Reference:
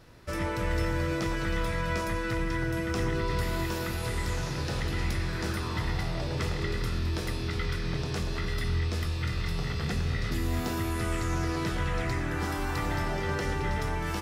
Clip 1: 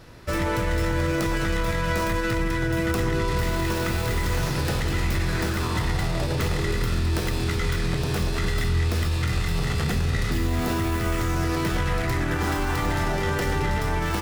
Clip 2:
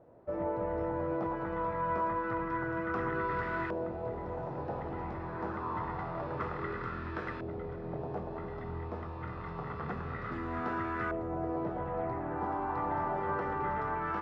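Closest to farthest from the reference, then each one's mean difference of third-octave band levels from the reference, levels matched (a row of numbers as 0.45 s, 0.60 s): 1, 2; 2.0 dB, 11.5 dB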